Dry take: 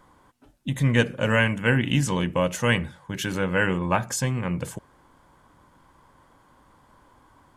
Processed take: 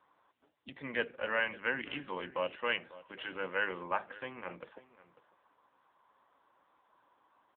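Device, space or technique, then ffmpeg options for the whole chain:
satellite phone: -filter_complex "[0:a]highpass=frequency=220:poles=1,asettb=1/sr,asplit=3[link_01][link_02][link_03];[link_01]atrim=end=2.314[link_04];[link_02]atrim=start=2.31:end=3.64,asetpts=PTS-STARTPTS,afade=type=in:duration=0.004:curve=qsin,afade=type=out:start_time=1.326:duration=0.004:curve=qsin,adynamicequalizer=threshold=0.00708:dfrequency=2800:dqfactor=5.6:tfrequency=2800:tqfactor=5.6:attack=5:release=100:ratio=0.375:range=3:mode=boostabove:tftype=bell[link_05];[link_03]atrim=start=3.636[link_06];[link_04][link_05]acrossfade=duration=0.004:curve1=hsin:curve2=qsin[link_07];[link_07][link_06]acrossfade=duration=0.004:curve1=qsin:curve2=hsin,highpass=370,lowpass=3300,aecho=1:1:545:0.126,volume=-8dB" -ar 8000 -c:a libopencore_amrnb -b:a 6700

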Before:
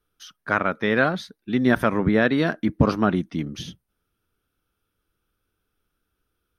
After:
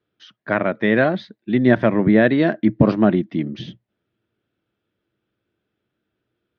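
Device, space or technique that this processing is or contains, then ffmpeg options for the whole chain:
guitar cabinet: -af "highpass=110,equalizer=frequency=120:width_type=q:width=4:gain=9,equalizer=frequency=210:width_type=q:width=4:gain=6,equalizer=frequency=340:width_type=q:width=4:gain=8,equalizer=frequency=620:width_type=q:width=4:gain=8,equalizer=frequency=1300:width_type=q:width=4:gain=-6,equalizer=frequency=1900:width_type=q:width=4:gain=5,lowpass=frequency=4200:width=0.5412,lowpass=frequency=4200:width=1.3066"

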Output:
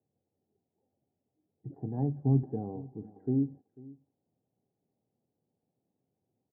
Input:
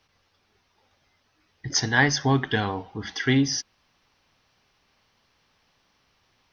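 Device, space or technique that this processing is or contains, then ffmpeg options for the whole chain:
under water: -filter_complex "[0:a]highpass=frequency=110:width=0.5412,highpass=frequency=110:width=1.3066,lowpass=frequency=440:width=0.5412,lowpass=frequency=440:width=1.3066,equalizer=frequency=770:width_type=o:width=0.51:gain=11.5,asettb=1/sr,asplit=3[link_01][link_02][link_03];[link_01]atrim=end=1.784[link_04];[link_02]atrim=start=1.78:end=2.43,asetpts=PTS-STARTPTS,afade=type=in:duration=0.004:curve=qsin,afade=type=out:start_time=0.646:duration=0.004:curve=qsin,asubboost=boost=10:cutoff=240[link_05];[link_03]atrim=start=2.426[link_06];[link_04][link_05]acrossfade=duration=0.004:curve1=hsin:curve2=qsin[link_07];[link_07][link_06]acrossfade=duration=0.004:curve1=qsin:curve2=hsin,aecho=1:1:494:0.0891,volume=-7dB"

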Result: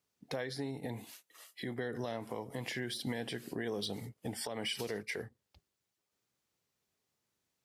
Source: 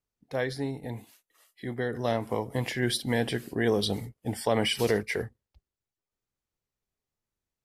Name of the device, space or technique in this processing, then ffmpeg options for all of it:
broadcast voice chain: -af "highpass=120,deesser=0.6,acompressor=threshold=-40dB:ratio=3,equalizer=frequency=4600:width_type=o:width=2:gain=3,alimiter=level_in=8.5dB:limit=-24dB:level=0:latency=1:release=347,volume=-8.5dB,volume=5.5dB"

